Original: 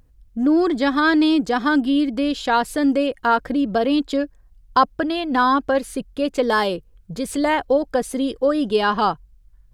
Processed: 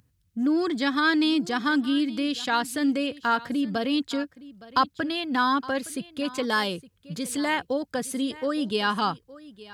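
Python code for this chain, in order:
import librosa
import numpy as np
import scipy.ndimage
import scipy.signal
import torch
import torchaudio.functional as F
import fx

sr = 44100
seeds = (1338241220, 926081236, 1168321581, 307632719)

p1 = scipy.signal.sosfilt(scipy.signal.butter(4, 92.0, 'highpass', fs=sr, output='sos'), x)
p2 = fx.peak_eq(p1, sr, hz=560.0, db=-10.5, octaves=2.2)
y = p2 + fx.echo_single(p2, sr, ms=865, db=-19.0, dry=0)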